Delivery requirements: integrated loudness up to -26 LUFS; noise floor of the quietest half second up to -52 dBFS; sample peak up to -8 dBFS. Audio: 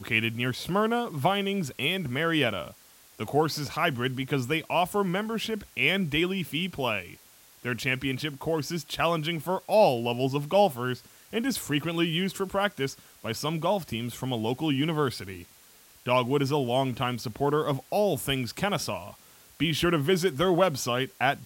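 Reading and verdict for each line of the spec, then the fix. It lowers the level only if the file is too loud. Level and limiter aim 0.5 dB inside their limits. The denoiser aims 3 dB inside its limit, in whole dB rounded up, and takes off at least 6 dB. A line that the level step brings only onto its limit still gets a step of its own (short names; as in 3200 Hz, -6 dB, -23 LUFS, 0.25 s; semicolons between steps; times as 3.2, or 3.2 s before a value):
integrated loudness -27.5 LUFS: OK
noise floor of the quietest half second -55 dBFS: OK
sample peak -9.0 dBFS: OK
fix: none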